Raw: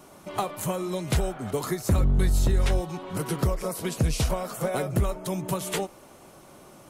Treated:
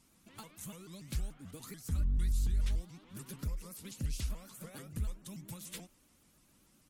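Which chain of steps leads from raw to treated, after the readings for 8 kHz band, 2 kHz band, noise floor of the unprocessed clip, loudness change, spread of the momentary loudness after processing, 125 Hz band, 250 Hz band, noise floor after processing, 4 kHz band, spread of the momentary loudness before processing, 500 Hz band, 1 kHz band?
-12.5 dB, -17.5 dB, -51 dBFS, -12.0 dB, 16 LU, -12.0 dB, -16.5 dB, -68 dBFS, -14.0 dB, 8 LU, -26.0 dB, -24.5 dB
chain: amplifier tone stack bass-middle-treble 6-0-2; comb 3.9 ms, depth 40%; vibrato with a chosen wave saw up 6.9 Hz, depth 250 cents; trim +1.5 dB

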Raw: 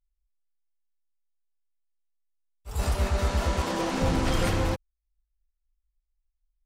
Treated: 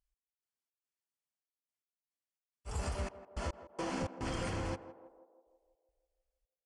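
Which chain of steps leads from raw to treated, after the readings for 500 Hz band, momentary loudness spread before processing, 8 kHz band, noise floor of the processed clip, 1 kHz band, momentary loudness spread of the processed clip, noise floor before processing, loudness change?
-11.0 dB, 6 LU, -11.0 dB, under -85 dBFS, -11.0 dB, 11 LU, -81 dBFS, -12.5 dB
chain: high-pass 60 Hz 6 dB/octave; band-stop 3.8 kHz, Q 5.1; compression 6:1, threshold -33 dBFS, peak gain reduction 11 dB; trance gate "x..xx.xxxx.." 107 bpm -60 dB; on a send: band-passed feedback delay 163 ms, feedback 61%, band-pass 560 Hz, level -11 dB; on the sum: resampled via 22.05 kHz; trim -1 dB

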